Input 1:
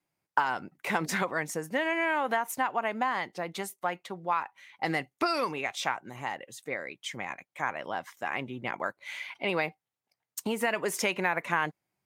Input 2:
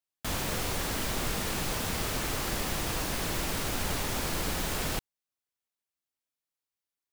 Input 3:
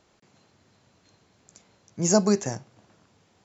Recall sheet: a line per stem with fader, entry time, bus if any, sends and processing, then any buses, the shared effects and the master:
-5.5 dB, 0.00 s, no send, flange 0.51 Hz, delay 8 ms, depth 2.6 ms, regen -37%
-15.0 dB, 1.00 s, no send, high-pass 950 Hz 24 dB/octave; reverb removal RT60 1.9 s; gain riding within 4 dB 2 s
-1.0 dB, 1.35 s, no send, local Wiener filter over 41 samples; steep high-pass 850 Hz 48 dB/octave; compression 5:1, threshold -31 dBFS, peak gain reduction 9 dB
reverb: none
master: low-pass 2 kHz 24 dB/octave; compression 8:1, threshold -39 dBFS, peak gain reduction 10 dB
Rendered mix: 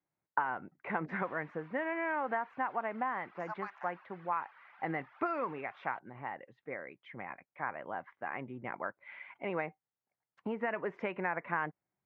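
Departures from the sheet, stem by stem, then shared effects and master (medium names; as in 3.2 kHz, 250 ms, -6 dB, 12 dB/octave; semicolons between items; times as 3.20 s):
stem 1: missing flange 0.51 Hz, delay 8 ms, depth 2.6 ms, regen -37%; master: missing compression 8:1, threshold -39 dBFS, peak gain reduction 10 dB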